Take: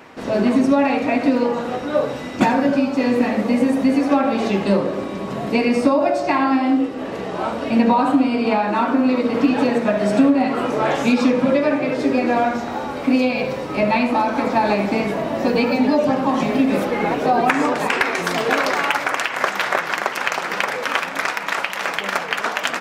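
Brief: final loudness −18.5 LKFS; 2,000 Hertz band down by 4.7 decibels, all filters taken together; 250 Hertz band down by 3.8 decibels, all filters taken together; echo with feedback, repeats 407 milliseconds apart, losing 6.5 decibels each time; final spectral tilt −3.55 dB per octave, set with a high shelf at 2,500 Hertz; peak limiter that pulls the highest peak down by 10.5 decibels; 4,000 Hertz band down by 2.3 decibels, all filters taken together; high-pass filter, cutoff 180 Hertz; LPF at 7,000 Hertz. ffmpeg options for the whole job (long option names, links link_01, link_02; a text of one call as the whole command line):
ffmpeg -i in.wav -af "highpass=180,lowpass=7000,equalizer=frequency=250:width_type=o:gain=-3,equalizer=frequency=2000:width_type=o:gain=-7,highshelf=frequency=2500:gain=3.5,equalizer=frequency=4000:width_type=o:gain=-3,alimiter=limit=-15dB:level=0:latency=1,aecho=1:1:407|814|1221|1628|2035|2442:0.473|0.222|0.105|0.0491|0.0231|0.0109,volume=5dB" out.wav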